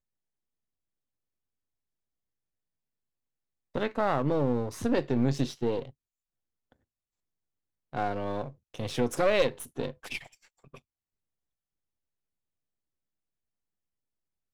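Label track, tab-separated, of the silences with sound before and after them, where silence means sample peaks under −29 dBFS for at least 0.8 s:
5.820000	7.950000	silence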